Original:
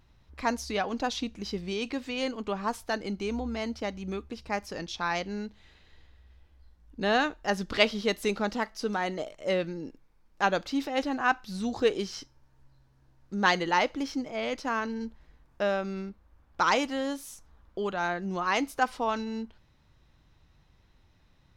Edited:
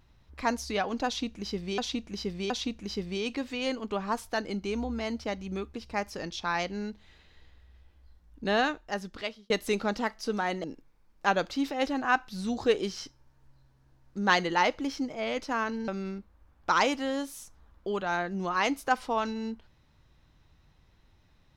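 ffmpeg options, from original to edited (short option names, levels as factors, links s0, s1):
-filter_complex "[0:a]asplit=6[s0][s1][s2][s3][s4][s5];[s0]atrim=end=1.782[s6];[s1]atrim=start=1.058:end=1.782[s7];[s2]atrim=start=1.058:end=8.06,asetpts=PTS-STARTPTS,afade=t=out:st=5.992:d=1.01[s8];[s3]atrim=start=8.06:end=9.202,asetpts=PTS-STARTPTS,afade=t=in:d=0.004:c=hsin[s9];[s4]atrim=start=9.798:end=15.042[s10];[s5]atrim=start=15.788[s11];[s6][s7]acrossfade=d=0.004:c1=hsin:c2=hsin[s12];[s8][s9]concat=n=2:v=0:a=1[s13];[s12][s13]acrossfade=d=0.004:c1=hsin:c2=hsin[s14];[s14][s10]acrossfade=d=0.004:c1=hsin:c2=hsin[s15];[s15][s11]acrossfade=d=0.004:c1=hsin:c2=hsin"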